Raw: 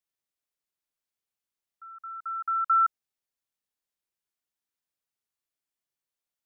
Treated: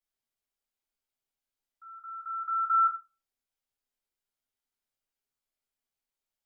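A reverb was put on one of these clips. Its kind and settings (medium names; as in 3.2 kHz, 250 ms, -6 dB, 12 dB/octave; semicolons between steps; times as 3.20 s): simulated room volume 120 m³, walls furnished, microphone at 4 m; trim -10 dB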